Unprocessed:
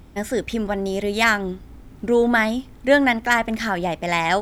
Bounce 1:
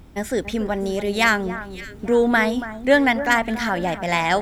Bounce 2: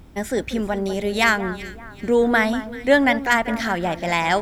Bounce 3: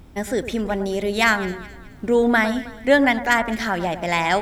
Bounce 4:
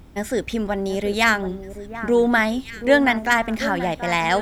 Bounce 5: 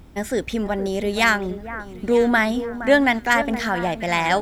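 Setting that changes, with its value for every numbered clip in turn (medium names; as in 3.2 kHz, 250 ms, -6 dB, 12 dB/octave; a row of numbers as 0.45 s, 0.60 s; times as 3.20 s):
echo whose repeats swap between lows and highs, time: 283 ms, 192 ms, 106 ms, 731 ms, 469 ms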